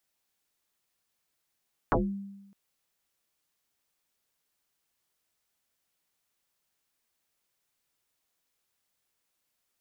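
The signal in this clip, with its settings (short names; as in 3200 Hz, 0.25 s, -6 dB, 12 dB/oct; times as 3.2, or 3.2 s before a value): FM tone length 0.61 s, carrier 198 Hz, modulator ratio 0.79, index 9.6, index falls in 0.27 s exponential, decay 1.02 s, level -19.5 dB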